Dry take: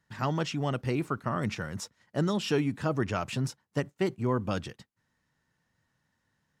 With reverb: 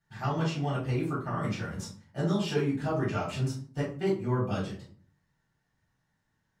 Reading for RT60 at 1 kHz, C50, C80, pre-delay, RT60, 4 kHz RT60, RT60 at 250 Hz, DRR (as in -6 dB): 0.40 s, 6.5 dB, 12.0 dB, 3 ms, 0.50 s, 0.30 s, 0.65 s, -7.0 dB